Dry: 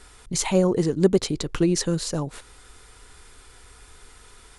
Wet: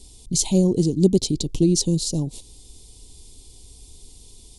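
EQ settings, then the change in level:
Butterworth band-reject 1,500 Hz, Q 0.78
flat-topped bell 1,100 Hz −10.5 dB 3 octaves
+4.5 dB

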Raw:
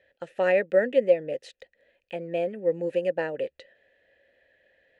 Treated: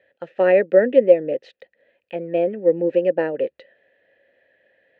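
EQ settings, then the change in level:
dynamic equaliser 330 Hz, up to +7 dB, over −37 dBFS, Q 1
high-pass filter 130 Hz 12 dB per octave
high-frequency loss of the air 230 metres
+4.5 dB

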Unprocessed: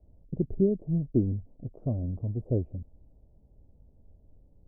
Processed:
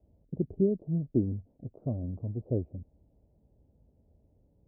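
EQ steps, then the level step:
high-pass filter 49 Hz
high-frequency loss of the air 460 metres
low-shelf EQ 120 Hz −6 dB
0.0 dB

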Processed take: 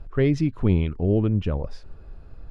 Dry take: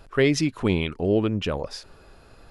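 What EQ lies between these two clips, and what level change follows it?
RIAA equalisation playback
−6.0 dB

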